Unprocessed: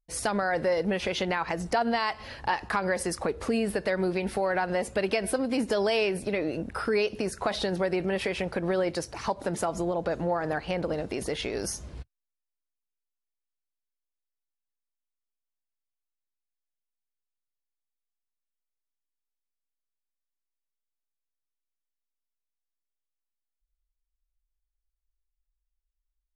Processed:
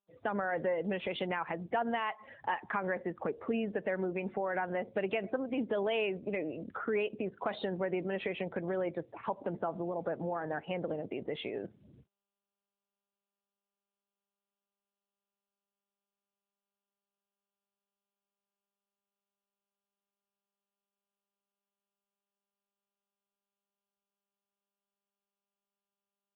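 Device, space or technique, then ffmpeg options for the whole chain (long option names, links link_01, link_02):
mobile call with aggressive noise cancelling: -af "highpass=120,afftdn=noise_reduction=24:noise_floor=-40,volume=-5.5dB" -ar 8000 -c:a libopencore_amrnb -b:a 10200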